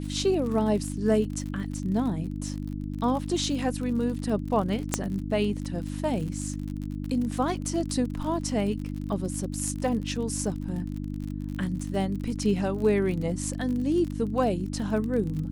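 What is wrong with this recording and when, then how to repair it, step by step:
surface crackle 46 per second −33 dBFS
mains hum 50 Hz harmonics 6 −33 dBFS
0:04.94: click −8 dBFS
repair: click removal
hum removal 50 Hz, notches 6

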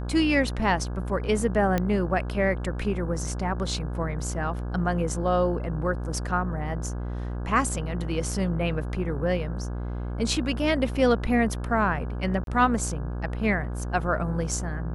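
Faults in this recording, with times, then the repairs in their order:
mains buzz 60 Hz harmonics 28 −31 dBFS
0:01.78: click −12 dBFS
0:12.44–0:12.47: drop-out 32 ms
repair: click removal
hum removal 60 Hz, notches 28
repair the gap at 0:12.44, 32 ms

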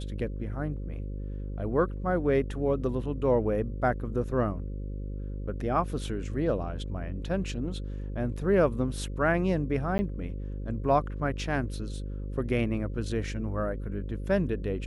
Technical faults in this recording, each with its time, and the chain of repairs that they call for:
mains buzz 50 Hz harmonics 11 −35 dBFS
0:09.98–0:09.99: drop-out 10 ms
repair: hum removal 50 Hz, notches 11
repair the gap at 0:09.98, 10 ms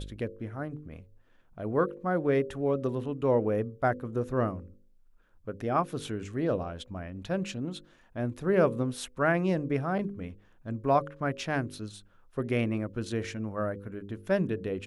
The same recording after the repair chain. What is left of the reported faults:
none of them is left

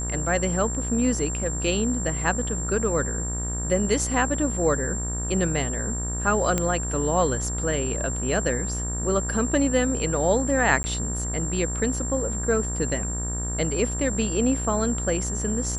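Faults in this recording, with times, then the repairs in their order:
mains buzz 60 Hz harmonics 32 −30 dBFS
whistle 7,400 Hz −30 dBFS
0:06.58: click −9 dBFS
0:10.83–0:10.84: drop-out 10 ms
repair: click removal
hum removal 60 Hz, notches 32
notch filter 7,400 Hz, Q 30
repair the gap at 0:10.83, 10 ms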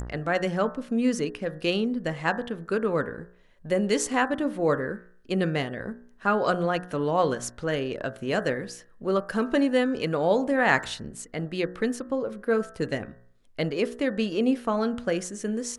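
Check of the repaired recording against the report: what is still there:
none of them is left

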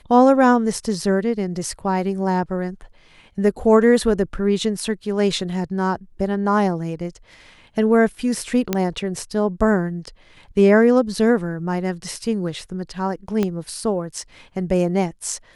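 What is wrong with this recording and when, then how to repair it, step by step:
0:08.73: click −5 dBFS
0:13.43: click −9 dBFS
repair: click removal

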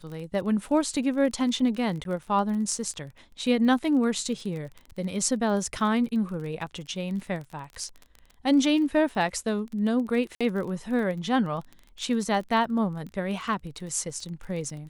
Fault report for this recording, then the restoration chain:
surface crackle 28 per second −34 dBFS
0:02.04–0:02.05: drop-out 12 ms
0:10.35–0:10.41: drop-out 56 ms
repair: click removal
repair the gap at 0:02.04, 12 ms
repair the gap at 0:10.35, 56 ms

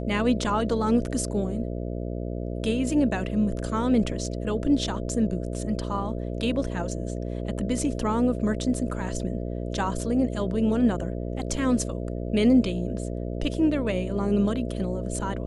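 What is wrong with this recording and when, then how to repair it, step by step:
mains buzz 60 Hz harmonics 11 −31 dBFS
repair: hum removal 60 Hz, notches 11

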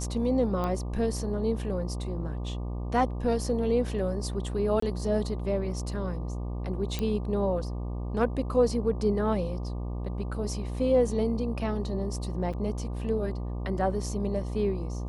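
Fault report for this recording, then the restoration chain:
mains buzz 60 Hz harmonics 20 −33 dBFS
0:00.64: click −19 dBFS
0:04.80–0:04.82: drop-out 24 ms
0:06.99: click −16 dBFS
0:12.53–0:12.54: drop-out 6.1 ms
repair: click removal
hum removal 60 Hz, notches 20
repair the gap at 0:04.80, 24 ms
repair the gap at 0:12.53, 6.1 ms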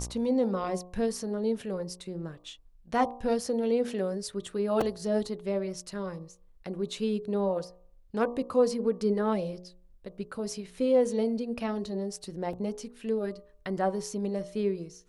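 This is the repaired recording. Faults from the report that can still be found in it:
none of them is left

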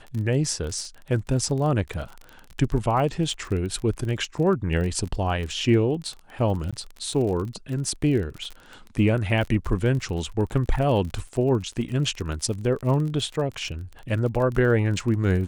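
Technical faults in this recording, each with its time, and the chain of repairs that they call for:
surface crackle 31 per second −30 dBFS
0:06.71–0:06.73: drop-out 16 ms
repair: click removal
repair the gap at 0:06.71, 16 ms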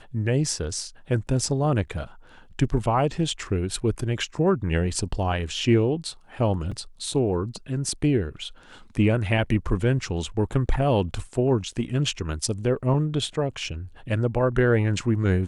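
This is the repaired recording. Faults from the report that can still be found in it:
none of them is left

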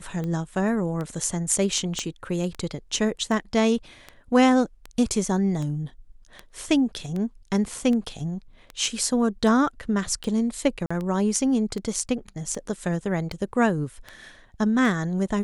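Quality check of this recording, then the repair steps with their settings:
scratch tick 78 rpm −20 dBFS
0:01.99: click −15 dBFS
0:10.86–0:10.90: drop-out 45 ms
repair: click removal
repair the gap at 0:10.86, 45 ms

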